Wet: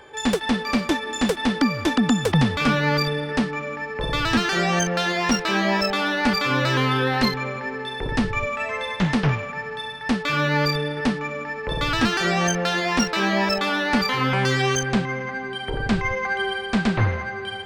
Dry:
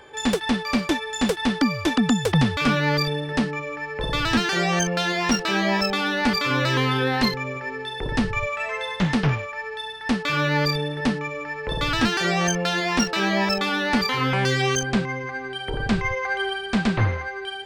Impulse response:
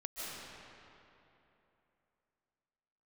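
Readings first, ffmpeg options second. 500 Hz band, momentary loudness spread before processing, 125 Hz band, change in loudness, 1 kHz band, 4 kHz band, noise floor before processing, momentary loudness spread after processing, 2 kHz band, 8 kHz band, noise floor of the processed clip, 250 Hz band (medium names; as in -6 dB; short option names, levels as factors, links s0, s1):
+1.0 dB, 9 LU, +0.5 dB, +0.5 dB, +1.5 dB, 0.0 dB, -34 dBFS, 8 LU, +1.0 dB, 0.0 dB, -32 dBFS, +0.5 dB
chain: -filter_complex "[0:a]asplit=2[s0][s1];[1:a]atrim=start_sample=2205,lowpass=2300,lowshelf=f=440:g=-10[s2];[s1][s2]afir=irnorm=-1:irlink=0,volume=0.299[s3];[s0][s3]amix=inputs=2:normalize=0"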